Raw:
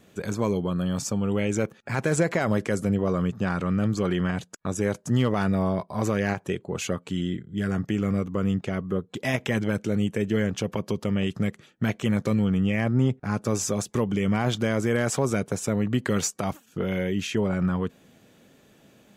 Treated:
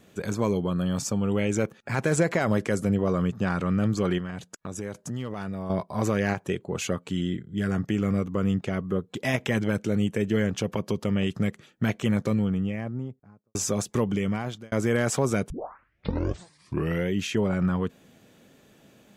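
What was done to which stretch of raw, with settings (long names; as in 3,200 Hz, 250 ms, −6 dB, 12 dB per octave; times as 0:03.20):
0:04.18–0:05.70: downward compressor 2.5 to 1, threshold −33 dBFS
0:11.97–0:13.55: fade out and dull
0:14.09–0:14.72: fade out
0:15.50: tape start 1.59 s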